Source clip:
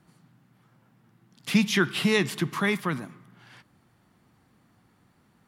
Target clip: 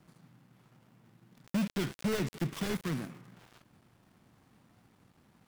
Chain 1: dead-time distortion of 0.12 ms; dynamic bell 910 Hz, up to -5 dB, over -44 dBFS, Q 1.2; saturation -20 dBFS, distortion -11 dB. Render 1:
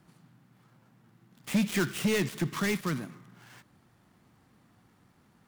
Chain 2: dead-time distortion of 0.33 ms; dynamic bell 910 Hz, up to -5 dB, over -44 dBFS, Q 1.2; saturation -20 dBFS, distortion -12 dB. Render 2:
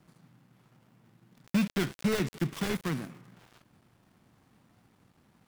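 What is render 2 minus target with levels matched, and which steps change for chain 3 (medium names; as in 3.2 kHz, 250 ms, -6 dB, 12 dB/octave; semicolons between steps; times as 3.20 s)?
saturation: distortion -5 dB
change: saturation -26 dBFS, distortion -7 dB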